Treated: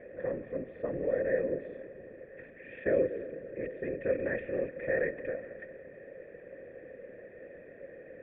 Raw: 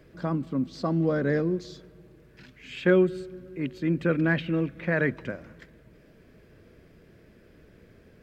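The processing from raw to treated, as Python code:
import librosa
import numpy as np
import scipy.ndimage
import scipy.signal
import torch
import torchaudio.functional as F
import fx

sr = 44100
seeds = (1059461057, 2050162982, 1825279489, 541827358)

y = fx.bin_compress(x, sr, power=0.6)
y = fx.whisperise(y, sr, seeds[0])
y = fx.formant_cascade(y, sr, vowel='e')
y = y * librosa.db_to_amplitude(1.0)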